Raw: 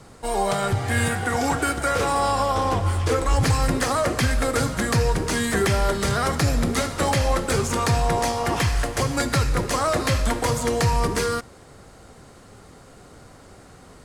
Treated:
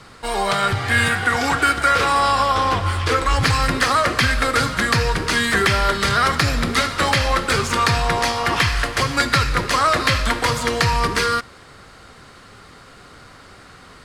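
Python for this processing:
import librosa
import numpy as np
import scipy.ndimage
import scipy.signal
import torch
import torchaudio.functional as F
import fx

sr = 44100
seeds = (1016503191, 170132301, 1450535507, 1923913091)

y = fx.band_shelf(x, sr, hz=2300.0, db=9.0, octaves=2.5)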